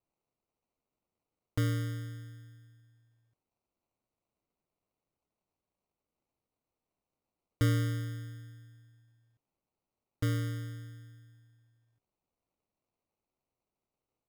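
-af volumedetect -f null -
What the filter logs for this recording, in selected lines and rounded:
mean_volume: -40.2 dB
max_volume: -17.2 dB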